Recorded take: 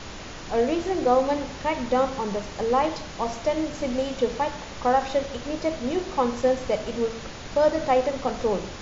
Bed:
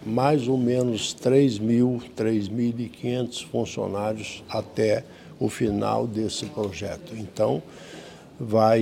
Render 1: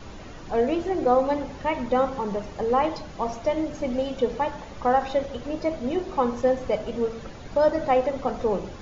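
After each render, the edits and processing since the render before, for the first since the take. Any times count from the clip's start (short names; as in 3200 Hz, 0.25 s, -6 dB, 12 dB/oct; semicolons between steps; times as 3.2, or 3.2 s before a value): denoiser 10 dB, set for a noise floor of -38 dBFS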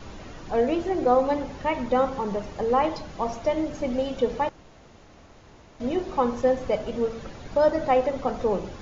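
4.49–5.8 room tone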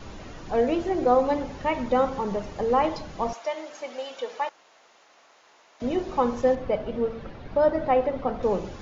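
3.33–5.82 HPF 760 Hz; 6.55–8.43 air absorption 210 m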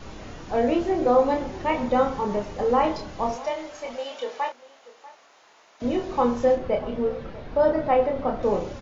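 doubler 29 ms -4 dB; outdoor echo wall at 110 m, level -18 dB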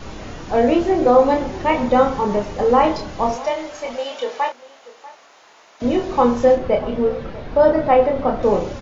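gain +6.5 dB; limiter -3 dBFS, peak gain reduction 1 dB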